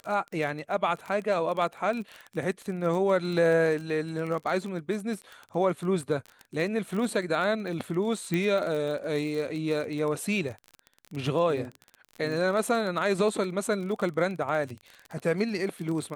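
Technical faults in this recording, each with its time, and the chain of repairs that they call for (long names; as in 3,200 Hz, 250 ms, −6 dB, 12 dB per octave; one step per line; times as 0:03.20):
surface crackle 26 per second −32 dBFS
0:08.34: click −16 dBFS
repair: click removal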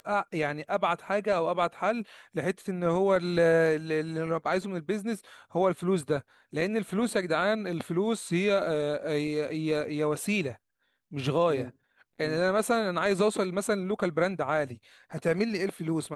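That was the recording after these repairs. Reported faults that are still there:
none of them is left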